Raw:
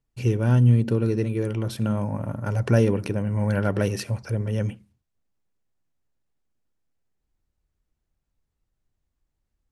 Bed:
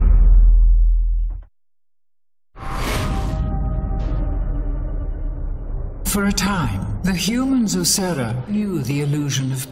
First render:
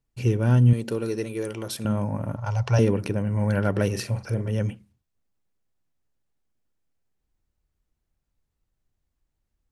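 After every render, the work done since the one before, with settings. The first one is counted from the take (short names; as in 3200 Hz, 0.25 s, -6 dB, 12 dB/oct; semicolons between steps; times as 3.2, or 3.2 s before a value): 0.73–1.85 tone controls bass -12 dB, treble +7 dB; 2.36–2.79 EQ curve 120 Hz 0 dB, 250 Hz -23 dB, 880 Hz +6 dB, 1700 Hz -5 dB, 2800 Hz +3 dB, 5800 Hz +5 dB, 10000 Hz -12 dB; 3.89–4.49 doubler 42 ms -9 dB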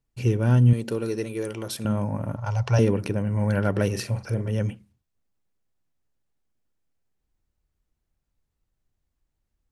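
nothing audible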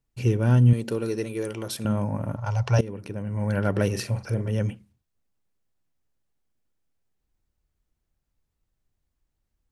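2.81–3.75 fade in, from -18 dB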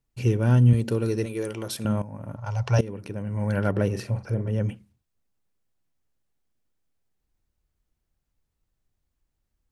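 0.74–1.26 bell 68 Hz +11.5 dB 2.1 oct; 2.02–2.79 fade in, from -14 dB; 3.71–4.69 high shelf 2000 Hz -9 dB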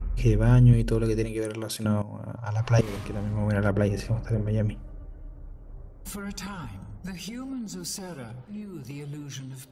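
add bed -17 dB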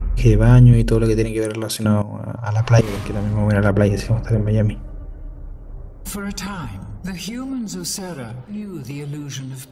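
gain +8.5 dB; limiter -2 dBFS, peak gain reduction 3 dB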